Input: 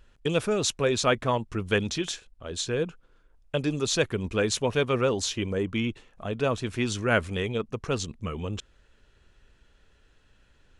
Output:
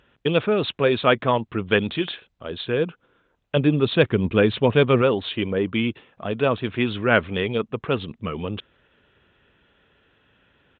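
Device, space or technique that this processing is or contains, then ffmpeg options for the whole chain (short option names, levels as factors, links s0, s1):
Bluetooth headset: -filter_complex "[0:a]asettb=1/sr,asplit=3[s0][s1][s2];[s0]atrim=end=3.564[s3];[s1]atrim=start=3.56:end=5.02,asetpts=PTS-STARTPTS,afade=t=in:d=0.004:c=qsin,afade=t=out:st=1.456:d=0.004:c=qsin,lowshelf=f=290:g=7.5[s4];[s2]atrim=start=5.016[s5];[s3][s4]acrossfade=d=0.004:c1=hsin:c2=qsin[s6];[s6][s5]acrossfade=d=0.004:c1=qsin:c2=hsin,highpass=120,aresample=8000,aresample=44100,volume=1.88" -ar 16000 -c:a sbc -b:a 64k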